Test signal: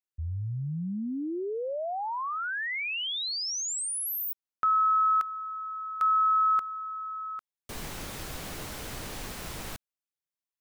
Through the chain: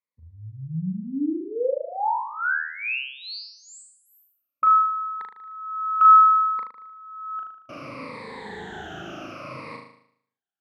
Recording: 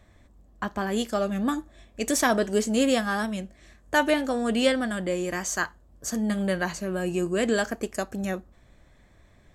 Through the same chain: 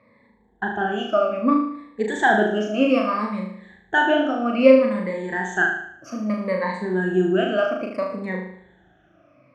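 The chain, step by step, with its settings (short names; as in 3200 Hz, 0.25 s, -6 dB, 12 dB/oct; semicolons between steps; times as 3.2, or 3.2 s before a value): moving spectral ripple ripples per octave 0.95, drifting -0.62 Hz, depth 21 dB; BPF 170–2200 Hz; on a send: flutter echo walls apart 6.5 m, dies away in 0.66 s; on the sum: gain -1 dB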